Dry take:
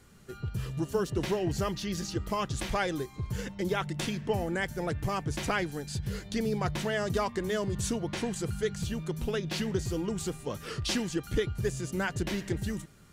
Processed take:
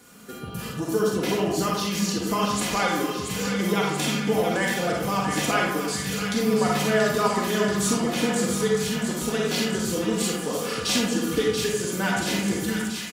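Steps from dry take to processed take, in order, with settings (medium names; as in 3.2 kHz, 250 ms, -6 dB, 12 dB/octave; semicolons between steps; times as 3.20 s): high-pass 150 Hz 12 dB/octave; treble shelf 9.8 kHz +7.5 dB; band-stop 1.9 kHz, Q 22; comb 4.1 ms, depth 56%; in parallel at 0 dB: compression, threshold -36 dBFS, peak gain reduction 13.5 dB; on the sum: crackle 17 per s -41 dBFS; on a send: feedback echo behind a high-pass 682 ms, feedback 72%, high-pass 1.4 kHz, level -6 dB; on the sum: algorithmic reverb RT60 0.89 s, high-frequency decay 0.45×, pre-delay 5 ms, DRR -2.5 dB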